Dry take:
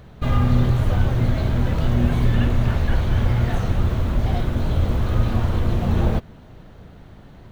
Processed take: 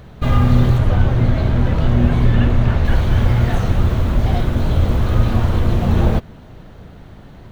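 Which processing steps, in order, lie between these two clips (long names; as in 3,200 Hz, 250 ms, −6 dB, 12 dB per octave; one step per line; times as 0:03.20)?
0:00.78–0:02.85: low-pass filter 3,700 Hz 6 dB per octave
level +4.5 dB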